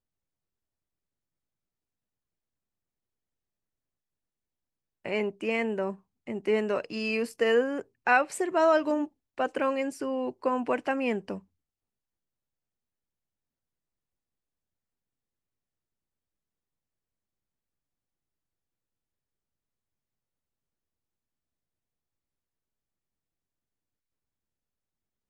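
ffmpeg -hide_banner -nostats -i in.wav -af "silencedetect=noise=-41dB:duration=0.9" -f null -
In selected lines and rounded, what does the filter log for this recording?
silence_start: 0.00
silence_end: 5.05 | silence_duration: 5.05
silence_start: 11.39
silence_end: 25.29 | silence_duration: 13.91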